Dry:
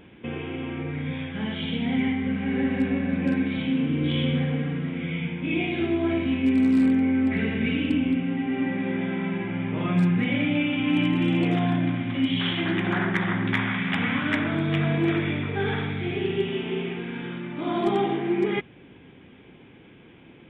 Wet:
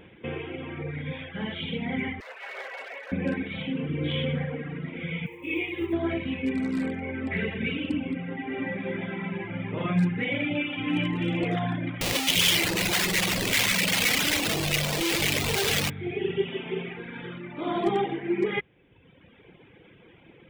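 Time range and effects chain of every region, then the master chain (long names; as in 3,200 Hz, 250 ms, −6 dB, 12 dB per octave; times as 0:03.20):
0:02.20–0:03.12: lower of the sound and its delayed copy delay 7.2 ms + high-pass filter 640 Hz 24 dB per octave
0:05.26–0:05.93: log-companded quantiser 8 bits + phaser with its sweep stopped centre 1,000 Hz, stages 8
0:12.01–0:15.90: high-pass filter 91 Hz + comparator with hysteresis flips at −38 dBFS + high shelf with overshoot 2,000 Hz +8 dB, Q 1.5
whole clip: reverb reduction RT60 1.3 s; thirty-one-band graphic EQ 250 Hz −7 dB, 500 Hz +5 dB, 2,000 Hz +3 dB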